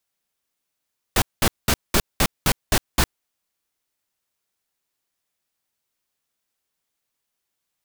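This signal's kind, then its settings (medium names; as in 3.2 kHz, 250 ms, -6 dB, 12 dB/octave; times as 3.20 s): noise bursts pink, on 0.06 s, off 0.20 s, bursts 8, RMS -17 dBFS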